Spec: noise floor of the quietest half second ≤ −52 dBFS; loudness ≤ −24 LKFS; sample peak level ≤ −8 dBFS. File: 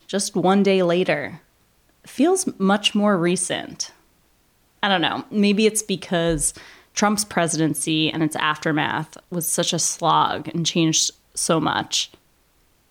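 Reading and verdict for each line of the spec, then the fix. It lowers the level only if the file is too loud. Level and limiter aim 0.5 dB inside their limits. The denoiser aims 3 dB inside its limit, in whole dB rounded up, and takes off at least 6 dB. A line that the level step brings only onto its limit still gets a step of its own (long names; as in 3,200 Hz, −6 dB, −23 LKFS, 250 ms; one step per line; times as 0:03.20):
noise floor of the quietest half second −61 dBFS: in spec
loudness −20.5 LKFS: out of spec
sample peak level −6.0 dBFS: out of spec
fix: level −4 dB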